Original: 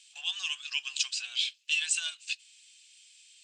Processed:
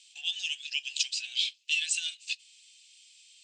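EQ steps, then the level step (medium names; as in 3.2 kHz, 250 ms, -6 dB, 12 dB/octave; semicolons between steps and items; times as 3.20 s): Butterworth band-stop 1.2 kHz, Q 1.3; peaking EQ 4.2 kHz +10 dB 2.9 oct; -8.5 dB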